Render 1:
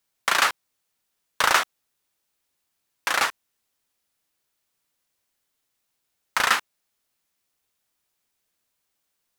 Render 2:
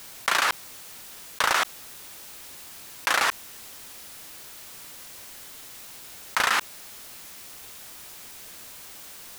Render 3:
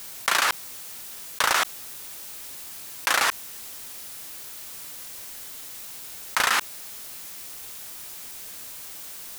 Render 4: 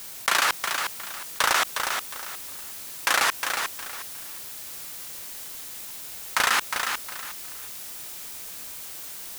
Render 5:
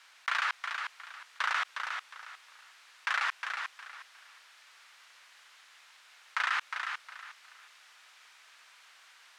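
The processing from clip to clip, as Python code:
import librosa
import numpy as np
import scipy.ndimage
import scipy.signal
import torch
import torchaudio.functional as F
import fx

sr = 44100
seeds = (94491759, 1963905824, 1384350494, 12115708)

y1 = fx.env_flatten(x, sr, amount_pct=100)
y1 = y1 * 10.0 ** (-6.5 / 20.0)
y2 = fx.high_shelf(y1, sr, hz=5600.0, db=5.5)
y3 = fx.echo_feedback(y2, sr, ms=360, feedback_pct=27, wet_db=-6.0)
y4 = fx.ladder_bandpass(y3, sr, hz=1800.0, resonance_pct=20)
y4 = y4 * 10.0 ** (3.5 / 20.0)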